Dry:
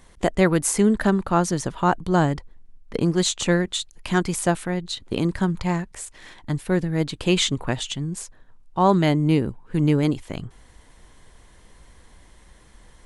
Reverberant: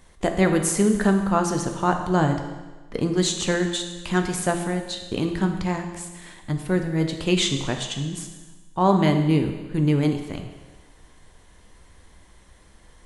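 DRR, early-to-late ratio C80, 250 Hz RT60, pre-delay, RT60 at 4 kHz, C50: 4.5 dB, 9.0 dB, 1.3 s, 9 ms, 1.2 s, 7.5 dB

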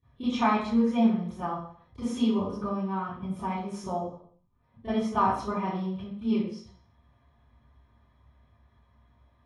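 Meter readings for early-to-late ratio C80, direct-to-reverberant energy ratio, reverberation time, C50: 5.0 dB, -21.5 dB, 0.55 s, 0.5 dB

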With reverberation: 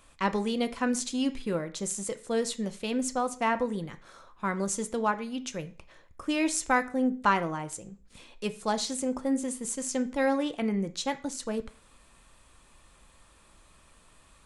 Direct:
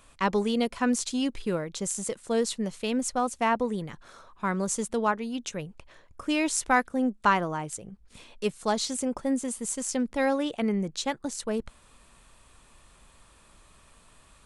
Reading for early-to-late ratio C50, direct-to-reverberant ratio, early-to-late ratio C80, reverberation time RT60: 16.5 dB, 8.5 dB, 20.5 dB, 0.40 s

